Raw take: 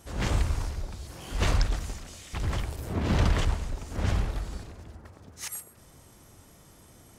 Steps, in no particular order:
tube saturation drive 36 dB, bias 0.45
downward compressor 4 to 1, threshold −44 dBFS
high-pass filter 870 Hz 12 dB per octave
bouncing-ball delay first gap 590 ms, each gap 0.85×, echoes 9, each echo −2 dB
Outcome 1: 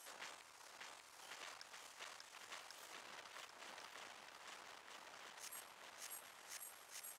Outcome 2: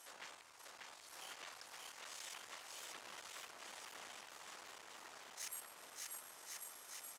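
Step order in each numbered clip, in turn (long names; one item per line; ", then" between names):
bouncing-ball delay, then downward compressor, then tube saturation, then high-pass filter
downward compressor, then bouncing-ball delay, then tube saturation, then high-pass filter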